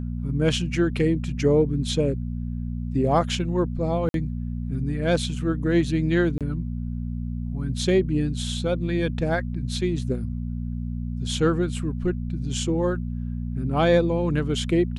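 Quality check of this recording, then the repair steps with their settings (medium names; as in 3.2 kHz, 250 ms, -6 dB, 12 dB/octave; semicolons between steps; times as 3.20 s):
hum 60 Hz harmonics 4 -29 dBFS
4.09–4.14 s: dropout 52 ms
6.38–6.41 s: dropout 27 ms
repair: de-hum 60 Hz, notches 4; interpolate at 4.09 s, 52 ms; interpolate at 6.38 s, 27 ms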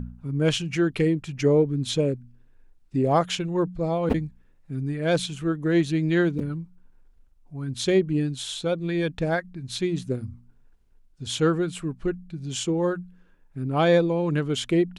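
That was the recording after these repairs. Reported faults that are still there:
nothing left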